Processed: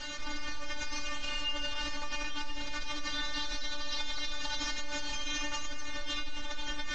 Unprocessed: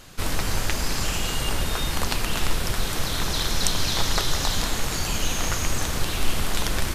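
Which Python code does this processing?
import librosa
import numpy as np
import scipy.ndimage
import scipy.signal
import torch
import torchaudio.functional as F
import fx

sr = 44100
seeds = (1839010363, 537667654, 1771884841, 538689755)

y = fx.cvsd(x, sr, bps=64000)
y = scipy.signal.sosfilt(scipy.signal.ellip(4, 1.0, 60, 6300.0, 'lowpass', fs=sr, output='sos'), y)
y = fx.peak_eq(y, sr, hz=2200.0, db=5.5, octaves=2.9)
y = fx.stiff_resonator(y, sr, f0_hz=290.0, decay_s=0.35, stiffness=0.002)
y = fx.env_flatten(y, sr, amount_pct=70)
y = y * 10.0 ** (-6.5 / 20.0)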